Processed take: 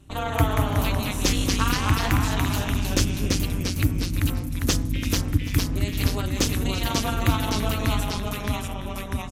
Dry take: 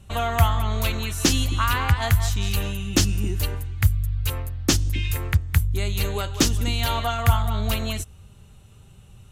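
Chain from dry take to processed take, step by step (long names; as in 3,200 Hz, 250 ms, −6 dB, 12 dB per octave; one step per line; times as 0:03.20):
amplitude modulation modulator 210 Hz, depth 85%
delay with pitch and tempo change per echo 161 ms, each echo −1 semitone, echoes 3
single-tap delay 338 ms −15.5 dB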